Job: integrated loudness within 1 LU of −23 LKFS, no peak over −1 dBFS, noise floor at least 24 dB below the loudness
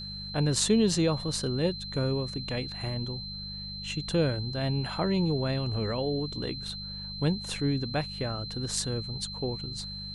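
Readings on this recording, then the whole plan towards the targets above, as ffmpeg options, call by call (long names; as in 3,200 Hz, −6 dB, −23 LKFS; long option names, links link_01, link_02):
mains hum 50 Hz; hum harmonics up to 200 Hz; level of the hum −40 dBFS; interfering tone 4,100 Hz; level of the tone −38 dBFS; integrated loudness −30.0 LKFS; sample peak −9.5 dBFS; target loudness −23.0 LKFS
→ -af "bandreject=frequency=50:width_type=h:width=4,bandreject=frequency=100:width_type=h:width=4,bandreject=frequency=150:width_type=h:width=4,bandreject=frequency=200:width_type=h:width=4"
-af "bandreject=frequency=4100:width=30"
-af "volume=7dB"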